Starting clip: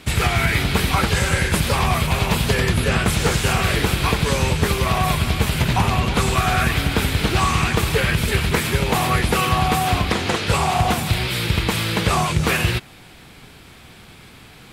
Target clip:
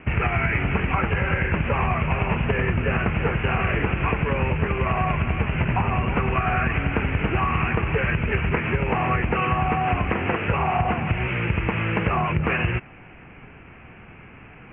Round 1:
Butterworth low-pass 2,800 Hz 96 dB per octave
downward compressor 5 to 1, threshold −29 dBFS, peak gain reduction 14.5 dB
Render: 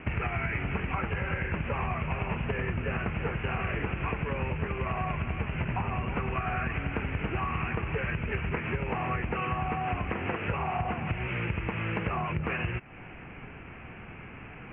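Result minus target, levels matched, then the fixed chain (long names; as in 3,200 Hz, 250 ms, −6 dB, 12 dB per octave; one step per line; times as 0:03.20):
downward compressor: peak gain reduction +9 dB
Butterworth low-pass 2,800 Hz 96 dB per octave
downward compressor 5 to 1, threshold −18 dBFS, peak gain reduction 5.5 dB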